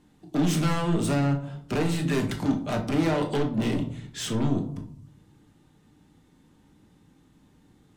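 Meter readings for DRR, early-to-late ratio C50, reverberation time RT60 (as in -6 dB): 2.5 dB, 10.5 dB, 0.65 s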